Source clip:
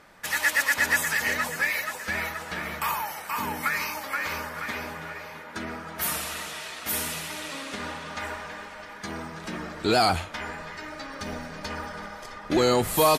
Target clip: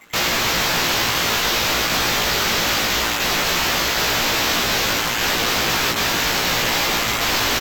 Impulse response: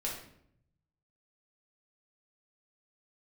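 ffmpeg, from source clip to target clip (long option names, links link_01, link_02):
-filter_complex "[0:a]afftdn=noise_reduction=21:noise_floor=-42,acrossover=split=130|3000[link_01][link_02][link_03];[link_02]acompressor=threshold=-31dB:ratio=10[link_04];[link_01][link_04][link_03]amix=inputs=3:normalize=0,tremolo=f=64:d=0.947,apsyclip=33.5dB,afftfilt=real='hypot(re,im)*cos(2*PI*random(0))':imag='hypot(re,im)*sin(2*PI*random(1))':win_size=512:overlap=0.75,acrusher=samples=8:mix=1:aa=0.000001,aeval=exprs='(mod(5.31*val(0)+1,2)-1)/5.31':channel_layout=same,asplit=2[link_05][link_06];[link_06]adelay=30,volume=-2dB[link_07];[link_05][link_07]amix=inputs=2:normalize=0,asetrate=76440,aresample=44100,volume=-2dB"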